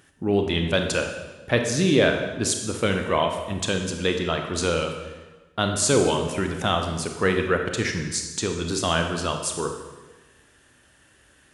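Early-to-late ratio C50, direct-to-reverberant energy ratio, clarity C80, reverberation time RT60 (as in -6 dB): 5.5 dB, 4.0 dB, 7.5 dB, 1.2 s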